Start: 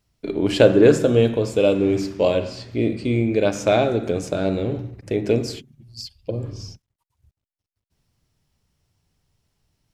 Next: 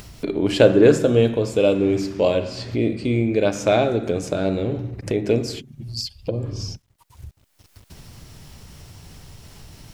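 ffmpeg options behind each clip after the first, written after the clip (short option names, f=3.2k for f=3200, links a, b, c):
-af "acompressor=mode=upward:threshold=-20dB:ratio=2.5"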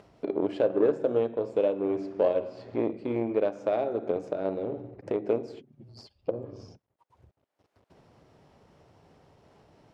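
-af "alimiter=limit=-11dB:level=0:latency=1:release=472,aeval=exprs='0.282*(cos(1*acos(clip(val(0)/0.282,-1,1)))-cos(1*PI/2))+0.0355*(cos(3*acos(clip(val(0)/0.282,-1,1)))-cos(3*PI/2))+0.00631*(cos(8*acos(clip(val(0)/0.282,-1,1)))-cos(8*PI/2))':c=same,bandpass=f=560:t=q:w=1.1:csg=0"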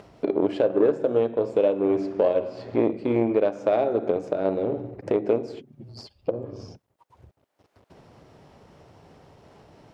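-af "alimiter=limit=-17.5dB:level=0:latency=1:release=419,volume=7dB"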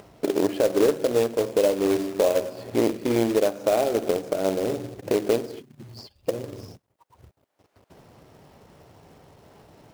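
-af "acrusher=bits=3:mode=log:mix=0:aa=0.000001"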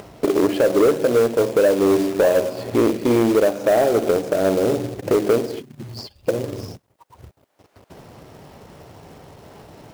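-af "asoftclip=type=tanh:threshold=-18dB,volume=8.5dB"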